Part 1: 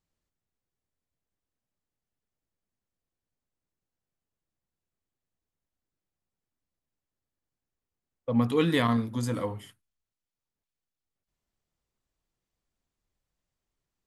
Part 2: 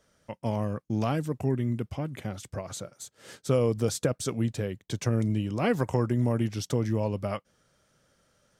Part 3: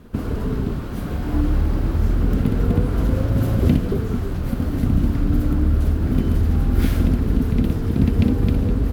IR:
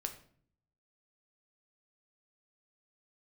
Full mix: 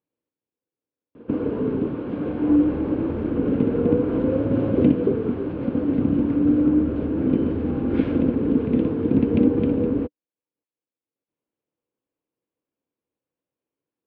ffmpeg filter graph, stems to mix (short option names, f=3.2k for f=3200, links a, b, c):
-filter_complex "[0:a]acompressor=threshold=-32dB:ratio=12,asoftclip=type=tanh:threshold=-37.5dB,volume=-0.5dB[a];[2:a]adelay=1150,volume=0dB[b];[a][b]amix=inputs=2:normalize=0,highpass=170,equalizer=f=180:t=q:w=4:g=-3,equalizer=f=300:t=q:w=4:g=9,equalizer=f=490:t=q:w=4:g=9,equalizer=f=710:t=q:w=4:g=-4,equalizer=f=1.3k:t=q:w=4:g=-5,equalizer=f=1.9k:t=q:w=4:g=-8,lowpass=f=2.6k:w=0.5412,lowpass=f=2.6k:w=1.3066"